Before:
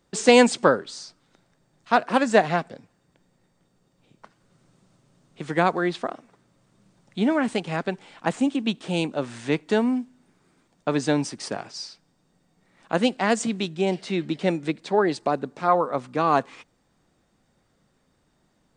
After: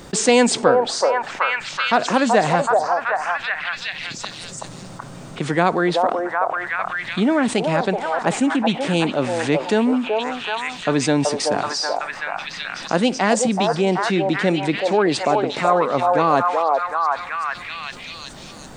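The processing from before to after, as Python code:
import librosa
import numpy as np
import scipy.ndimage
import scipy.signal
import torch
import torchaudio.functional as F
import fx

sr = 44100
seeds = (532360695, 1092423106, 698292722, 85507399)

p1 = x + fx.echo_stepped(x, sr, ms=378, hz=690.0, octaves=0.7, feedback_pct=70, wet_db=-0.5, dry=0)
p2 = fx.env_flatten(p1, sr, amount_pct=50)
y = F.gain(torch.from_numpy(p2), -1.0).numpy()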